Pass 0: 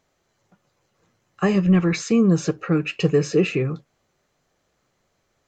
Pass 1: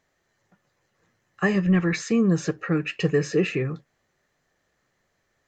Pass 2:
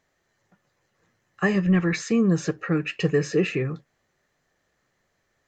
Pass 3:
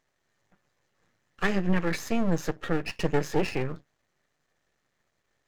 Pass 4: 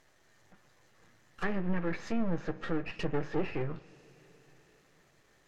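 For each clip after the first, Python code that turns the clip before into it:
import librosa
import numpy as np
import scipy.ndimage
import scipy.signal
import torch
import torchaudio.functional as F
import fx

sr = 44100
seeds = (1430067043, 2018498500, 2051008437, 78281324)

y1 = fx.peak_eq(x, sr, hz=1800.0, db=10.0, octaves=0.29)
y1 = y1 * librosa.db_to_amplitude(-3.5)
y2 = y1
y3 = np.maximum(y2, 0.0)
y4 = fx.power_curve(y3, sr, exponent=0.7)
y4 = fx.rev_double_slope(y4, sr, seeds[0], early_s=0.26, late_s=4.6, knee_db=-19, drr_db=12.5)
y4 = fx.env_lowpass_down(y4, sr, base_hz=2100.0, full_db=-20.5)
y4 = y4 * librosa.db_to_amplitude(-8.0)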